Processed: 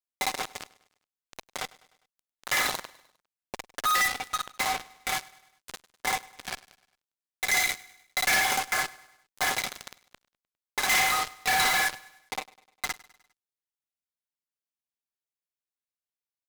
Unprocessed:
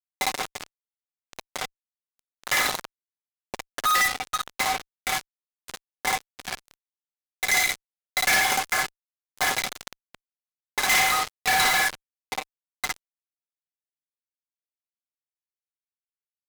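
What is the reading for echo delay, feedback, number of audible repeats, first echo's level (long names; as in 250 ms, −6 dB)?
101 ms, 52%, 3, −21.5 dB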